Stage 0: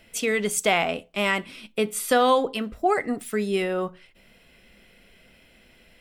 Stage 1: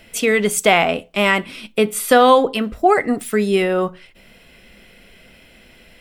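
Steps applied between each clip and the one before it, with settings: dynamic EQ 6300 Hz, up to -4 dB, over -41 dBFS, Q 0.81; gain +8 dB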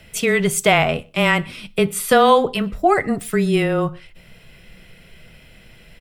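frequency shift -16 Hz; resonant low shelf 180 Hz +7 dB, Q 1.5; outdoor echo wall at 21 m, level -28 dB; gain -1 dB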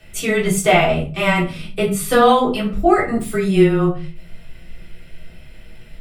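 shoebox room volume 190 m³, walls furnished, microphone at 3.6 m; gain -7 dB

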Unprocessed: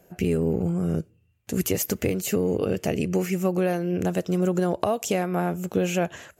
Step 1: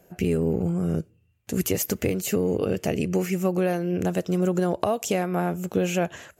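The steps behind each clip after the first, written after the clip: nothing audible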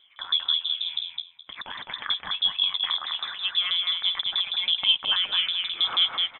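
LFO high-pass saw up 6.2 Hz 240–2600 Hz; feedback echo 0.21 s, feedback 19%, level -3.5 dB; inverted band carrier 3800 Hz; gain -2 dB

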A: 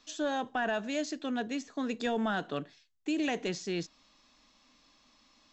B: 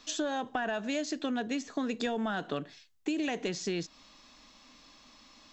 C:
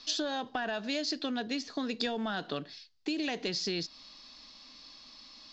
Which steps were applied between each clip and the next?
compressor, threshold -37 dBFS, peak gain reduction 10 dB; gain +7.5 dB
synth low-pass 4700 Hz, resonance Q 4.7; gain -2 dB

